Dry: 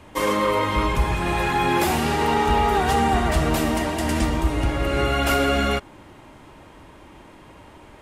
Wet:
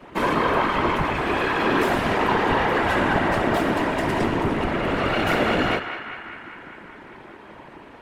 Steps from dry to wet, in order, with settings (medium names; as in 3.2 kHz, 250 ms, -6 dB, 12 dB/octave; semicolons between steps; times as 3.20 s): comb filter that takes the minimum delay 3.1 ms; high-pass 100 Hz 12 dB/octave; tone controls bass +1 dB, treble -14 dB; in parallel at -2 dB: peak limiter -21.5 dBFS, peak gain reduction 11 dB; on the sum: whisper effect; band-passed feedback delay 199 ms, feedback 75%, band-pass 1.7 kHz, level -8 dB; on a send at -19 dB: reverberation RT60 0.60 s, pre-delay 83 ms; on the sum: endings held to a fixed fall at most 180 dB/s; trim -1 dB